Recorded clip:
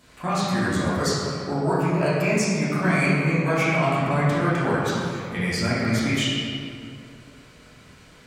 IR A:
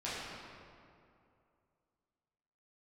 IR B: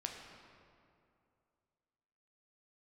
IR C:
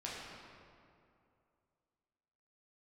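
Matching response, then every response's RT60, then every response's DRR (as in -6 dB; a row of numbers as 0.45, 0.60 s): A; 2.5, 2.5, 2.5 s; -10.5, 1.0, -6.5 dB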